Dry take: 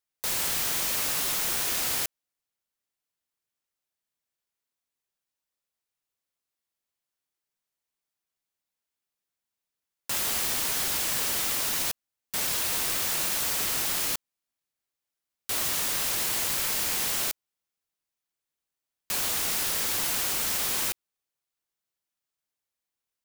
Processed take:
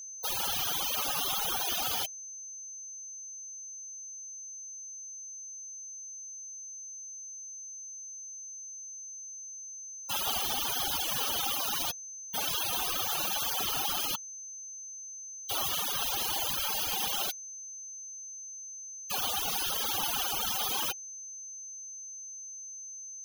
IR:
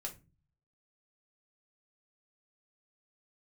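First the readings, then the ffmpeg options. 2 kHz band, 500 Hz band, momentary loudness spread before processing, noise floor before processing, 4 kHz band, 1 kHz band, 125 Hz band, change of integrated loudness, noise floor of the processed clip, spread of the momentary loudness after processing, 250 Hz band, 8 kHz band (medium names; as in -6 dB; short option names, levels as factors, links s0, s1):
-5.5 dB, -2.5 dB, 6 LU, under -85 dBFS, -0.5 dB, +2.0 dB, -4.0 dB, -7.0 dB, -44 dBFS, 12 LU, -4.0 dB, -3.0 dB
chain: -af "afftfilt=real='re*gte(hypot(re,im),0.0355)':imag='im*gte(hypot(re,im),0.0355)':win_size=1024:overlap=0.75,equalizer=f=800:t=o:w=0.33:g=11,equalizer=f=1250:t=o:w=0.33:g=6,equalizer=f=2000:t=o:w=0.33:g=-10,equalizer=f=3150:t=o:w=0.33:g=9,equalizer=f=8000:t=o:w=0.33:g=-11,aeval=exprs='val(0)+0.00891*sin(2*PI*6200*n/s)':c=same"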